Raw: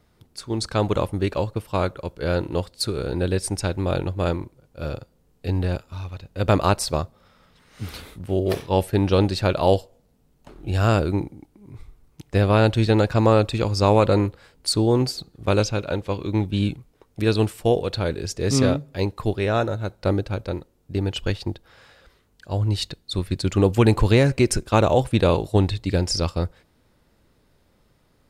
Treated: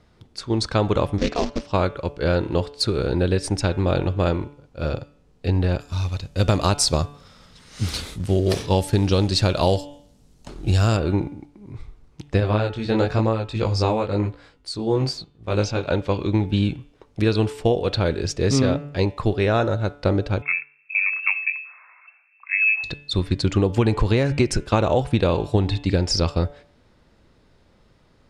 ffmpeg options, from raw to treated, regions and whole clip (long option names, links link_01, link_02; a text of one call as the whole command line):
ffmpeg -i in.wav -filter_complex "[0:a]asettb=1/sr,asplit=3[link_01][link_02][link_03];[link_01]atrim=end=1.184[link_04];[link_02]atrim=start=1.18:end=1.72,asetpts=PTS-STARTPTS,afade=type=in:duration=0.004:curve=qsin,afade=type=out:start_time=0.536:duration=0.004:curve=qsin,acrusher=bits=3:mode=log:mix=0:aa=0.000001,aeval=exprs='val(0)*sin(2*PI*130*n/s)':channel_layout=same,lowpass=frequency=5800:width_type=q:width=2.5[link_05];[link_03]atrim=start=1.716[link_06];[link_04][link_05]acrossfade=duration=0.004:curve1=hsin:curve2=qsin[link_07];[link_07][link_06]acrossfade=duration=0.004:curve1=qsin:curve2=hsin,asettb=1/sr,asplit=3[link_08][link_09][link_10];[link_08]atrim=end=5.804[link_11];[link_09]atrim=start=5.8:end=10.97,asetpts=PTS-STARTPTS,afade=type=in:duration=0.004:curve=qsin,afade=type=out:start_time=5.166:duration=0.004:curve=qsin,bass=frequency=250:gain=4,treble=frequency=4000:gain=14,acrusher=bits=7:mode=log:mix=0:aa=0.000001[link_12];[link_10]atrim=start=10.966[link_13];[link_11][link_12]acrossfade=duration=0.004:curve1=hsin:curve2=qsin[link_14];[link_14][link_13]acrossfade=duration=0.004:curve1=qsin:curve2=hsin,asettb=1/sr,asplit=3[link_15][link_16][link_17];[link_15]atrim=end=12.404[link_18];[link_16]atrim=start=12.4:end=15.87,asetpts=PTS-STARTPTS,afade=type=in:duration=0.004:curve=qsin,afade=type=out:start_time=3.466:duration=0.004:curve=qsin,tremolo=f=1.5:d=0.65,flanger=delay=17.5:depth=5.3:speed=1[link_19];[link_17]atrim=start=15.866[link_20];[link_18][link_19]acrossfade=duration=0.004:curve1=hsin:curve2=qsin[link_21];[link_21][link_20]acrossfade=duration=0.004:curve1=qsin:curve2=hsin,asettb=1/sr,asplit=3[link_22][link_23][link_24];[link_22]atrim=end=20.424[link_25];[link_23]atrim=start=20.42:end=22.84,asetpts=PTS-STARTPTS,afade=type=in:duration=0.004:curve=qsin,afade=type=out:start_time=2.416:duration=0.004:curve=qsin,lowpass=frequency=2300:width_type=q:width=0.5098,lowpass=frequency=2300:width_type=q:width=0.6013,lowpass=frequency=2300:width_type=q:width=0.9,lowpass=frequency=2300:width_type=q:width=2.563,afreqshift=-2700,highpass=1200[link_26];[link_24]atrim=start=22.836[link_27];[link_25][link_26]acrossfade=duration=0.004:curve1=hsin:curve2=qsin[link_28];[link_28][link_27]acrossfade=duration=0.004:curve1=qsin:curve2=hsin,lowpass=6300,bandreject=frequency=144.5:width_type=h:width=4,bandreject=frequency=289:width_type=h:width=4,bandreject=frequency=433.5:width_type=h:width=4,bandreject=frequency=578:width_type=h:width=4,bandreject=frequency=722.5:width_type=h:width=4,bandreject=frequency=867:width_type=h:width=4,bandreject=frequency=1011.5:width_type=h:width=4,bandreject=frequency=1156:width_type=h:width=4,bandreject=frequency=1300.5:width_type=h:width=4,bandreject=frequency=1445:width_type=h:width=4,bandreject=frequency=1589.5:width_type=h:width=4,bandreject=frequency=1734:width_type=h:width=4,bandreject=frequency=1878.5:width_type=h:width=4,bandreject=frequency=2023:width_type=h:width=4,bandreject=frequency=2167.5:width_type=h:width=4,bandreject=frequency=2312:width_type=h:width=4,bandreject=frequency=2456.5:width_type=h:width=4,bandreject=frequency=2601:width_type=h:width=4,bandreject=frequency=2745.5:width_type=h:width=4,bandreject=frequency=2890:width_type=h:width=4,bandreject=frequency=3034.5:width_type=h:width=4,bandreject=frequency=3179:width_type=h:width=4,bandreject=frequency=3323.5:width_type=h:width=4,bandreject=frequency=3468:width_type=h:width=4,bandreject=frequency=3612.5:width_type=h:width=4,acompressor=threshold=-19dB:ratio=6,volume=4.5dB" out.wav